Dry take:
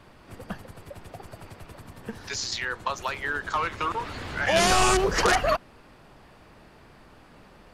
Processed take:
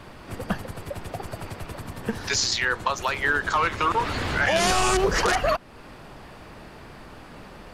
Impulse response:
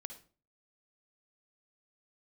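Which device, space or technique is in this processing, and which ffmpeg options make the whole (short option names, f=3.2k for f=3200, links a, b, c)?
stacked limiters: -af "alimiter=limit=-16.5dB:level=0:latency=1:release=366,alimiter=limit=-21dB:level=0:latency=1:release=286,volume=8.5dB"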